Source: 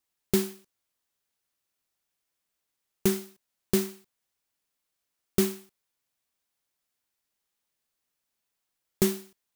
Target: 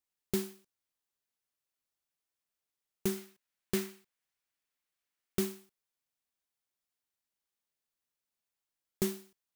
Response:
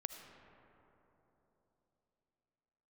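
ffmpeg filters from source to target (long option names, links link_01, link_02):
-filter_complex "[0:a]asettb=1/sr,asplit=3[link_01][link_02][link_03];[link_01]atrim=end=3.174[link_04];[link_02]atrim=start=3.17:end=5.39,asetpts=PTS-STARTPTS,afade=type=in:duration=0.004:curve=qsin,afade=type=out:start_time=2.216:duration=0.004:curve=qsin,equalizer=frequency=2000:width_type=o:width=1.6:gain=6[link_05];[link_03]atrim=start=5.386[link_06];[link_04][link_05]acrossfade=duration=0.004:curve1=hsin:curve2=qsin[link_07];[link_07][link_06]acrossfade=duration=0.004:curve1=qsin:curve2=hsin,volume=-8dB"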